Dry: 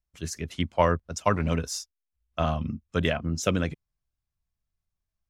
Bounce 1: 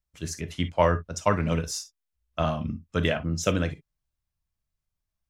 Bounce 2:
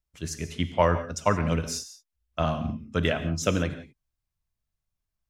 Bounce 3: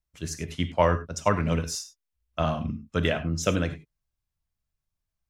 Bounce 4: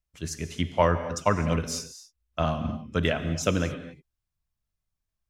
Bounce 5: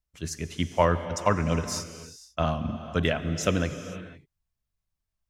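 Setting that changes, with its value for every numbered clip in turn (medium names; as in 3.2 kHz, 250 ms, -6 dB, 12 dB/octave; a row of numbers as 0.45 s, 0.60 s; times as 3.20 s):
gated-style reverb, gate: 80 ms, 200 ms, 120 ms, 290 ms, 530 ms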